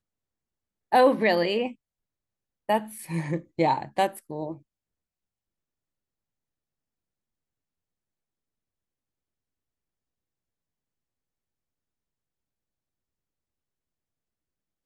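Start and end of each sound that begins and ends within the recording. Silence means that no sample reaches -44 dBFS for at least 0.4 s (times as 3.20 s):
0.92–1.73 s
2.69–4.58 s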